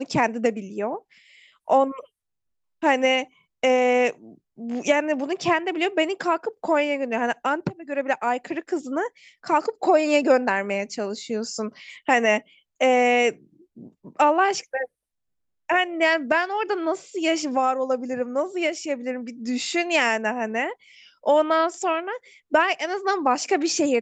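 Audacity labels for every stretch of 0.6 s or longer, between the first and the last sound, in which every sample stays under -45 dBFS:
2.050000	2.820000	silence
14.860000	15.690000	silence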